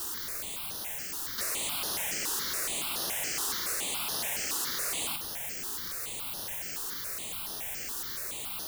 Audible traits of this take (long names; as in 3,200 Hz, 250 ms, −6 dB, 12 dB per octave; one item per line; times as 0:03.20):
a quantiser's noise floor 6 bits, dither triangular
notches that jump at a steady rate 7.1 Hz 600–7,700 Hz